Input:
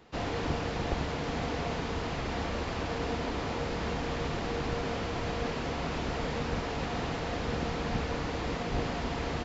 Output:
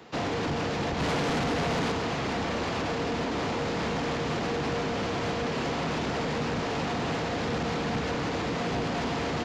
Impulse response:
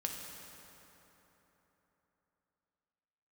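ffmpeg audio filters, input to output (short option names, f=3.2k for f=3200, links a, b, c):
-filter_complex "[0:a]highpass=120,acrossover=split=270[a][b];[b]alimiter=level_in=4.5dB:limit=-24dB:level=0:latency=1:release=87,volume=-4.5dB[c];[a][c]amix=inputs=2:normalize=0,asettb=1/sr,asplit=3[d][e][f];[d]atrim=end=1.004[g];[e]atrim=start=1:end=1.92,asetpts=PTS-STARTPTS,afade=t=in:d=0.004:c=qsin,afade=t=out:st=0.916:d=0.004:c=qsin,acontrast=23[h];[f]atrim=start=1.916[i];[g][h]acrossfade=d=0.004:c1=hsin:c2=qsin[j];[j][i]acrossfade=d=0.004:c1=qsin:c2=hsin,asoftclip=type=tanh:threshold=-32.5dB,volume=8.5dB"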